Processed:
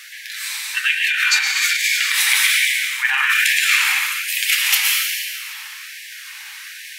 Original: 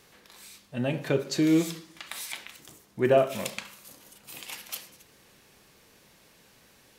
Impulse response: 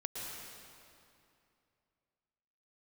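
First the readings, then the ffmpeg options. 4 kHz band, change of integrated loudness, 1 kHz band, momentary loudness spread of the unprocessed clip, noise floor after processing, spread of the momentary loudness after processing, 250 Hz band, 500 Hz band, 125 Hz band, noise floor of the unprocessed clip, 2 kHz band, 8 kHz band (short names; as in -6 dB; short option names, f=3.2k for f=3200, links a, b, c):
+22.5 dB, +12.5 dB, +7.5 dB, 23 LU, -36 dBFS, 19 LU, under -40 dB, under -40 dB, under -40 dB, -59 dBFS, +25.0 dB, +21.0 dB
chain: -filter_complex "[0:a]equalizer=f=125:t=o:w=1:g=-4,equalizer=f=250:t=o:w=1:g=3,equalizer=f=500:t=o:w=1:g=-8,equalizer=f=1k:t=o:w=1:g=-7,equalizer=f=2k:t=o:w=1:g=8,aeval=exprs='0.251*(cos(1*acos(clip(val(0)/0.251,-1,1)))-cos(1*PI/2))+0.00251*(cos(7*acos(clip(val(0)/0.251,-1,1)))-cos(7*PI/2))':c=same,flanger=delay=6:depth=8:regen=-40:speed=0.41:shape=triangular[a];[1:a]atrim=start_sample=2205[b];[a][b]afir=irnorm=-1:irlink=0,alimiter=level_in=28dB:limit=-1dB:release=50:level=0:latency=1,afftfilt=real='re*gte(b*sr/1024,740*pow(1600/740,0.5+0.5*sin(2*PI*1.2*pts/sr)))':imag='im*gte(b*sr/1024,740*pow(1600/740,0.5+0.5*sin(2*PI*1.2*pts/sr)))':win_size=1024:overlap=0.75,volume=-1dB"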